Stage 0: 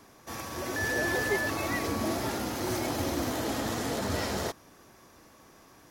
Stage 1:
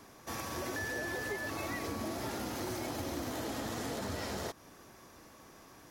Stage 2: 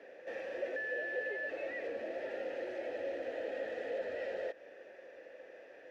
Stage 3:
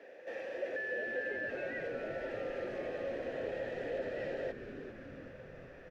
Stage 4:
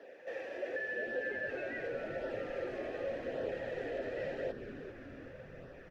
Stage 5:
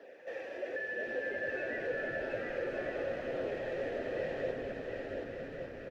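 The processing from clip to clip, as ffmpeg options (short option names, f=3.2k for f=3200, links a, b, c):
-af "acompressor=threshold=-35dB:ratio=6"
-filter_complex "[0:a]asplit=2[a][b];[b]highpass=f=720:p=1,volume=20dB,asoftclip=type=tanh:threshold=-25.5dB[c];[a][c]amix=inputs=2:normalize=0,lowpass=f=1k:p=1,volume=-6dB,asubboost=boost=7:cutoff=53,asplit=3[d][e][f];[d]bandpass=f=530:t=q:w=8,volume=0dB[g];[e]bandpass=f=1.84k:t=q:w=8,volume=-6dB[h];[f]bandpass=f=2.48k:t=q:w=8,volume=-9dB[i];[g][h][i]amix=inputs=3:normalize=0,volume=7dB"
-filter_complex "[0:a]asplit=9[a][b][c][d][e][f][g][h][i];[b]adelay=395,afreqshift=-130,volume=-10dB[j];[c]adelay=790,afreqshift=-260,volume=-14.2dB[k];[d]adelay=1185,afreqshift=-390,volume=-18.3dB[l];[e]adelay=1580,afreqshift=-520,volume=-22.5dB[m];[f]adelay=1975,afreqshift=-650,volume=-26.6dB[n];[g]adelay=2370,afreqshift=-780,volume=-30.8dB[o];[h]adelay=2765,afreqshift=-910,volume=-34.9dB[p];[i]adelay=3160,afreqshift=-1040,volume=-39.1dB[q];[a][j][k][l][m][n][o][p][q]amix=inputs=9:normalize=0"
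-af "flanger=delay=0.2:depth=2.8:regen=-49:speed=0.88:shape=sinusoidal,volume=4dB"
-af "aecho=1:1:720|1152|1411|1567|1660:0.631|0.398|0.251|0.158|0.1"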